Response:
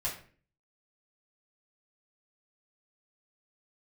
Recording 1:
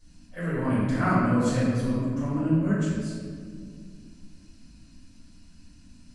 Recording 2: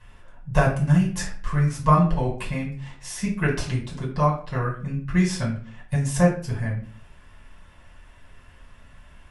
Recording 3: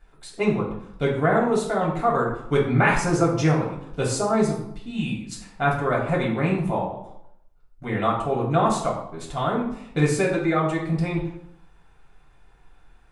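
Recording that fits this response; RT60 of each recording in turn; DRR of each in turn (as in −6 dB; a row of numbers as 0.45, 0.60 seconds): 2; 2.1, 0.45, 0.75 seconds; −10.5, −5.5, −4.5 decibels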